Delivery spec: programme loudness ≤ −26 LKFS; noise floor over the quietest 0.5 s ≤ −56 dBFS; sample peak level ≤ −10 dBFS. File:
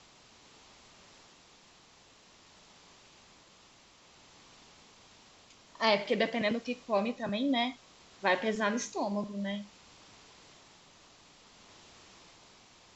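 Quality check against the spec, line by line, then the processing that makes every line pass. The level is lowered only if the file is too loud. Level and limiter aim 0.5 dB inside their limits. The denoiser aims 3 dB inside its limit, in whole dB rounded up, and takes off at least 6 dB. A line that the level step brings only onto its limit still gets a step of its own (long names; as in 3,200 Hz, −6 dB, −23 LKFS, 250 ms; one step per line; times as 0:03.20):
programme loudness −31.5 LKFS: in spec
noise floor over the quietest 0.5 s −60 dBFS: in spec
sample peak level −14.5 dBFS: in spec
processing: no processing needed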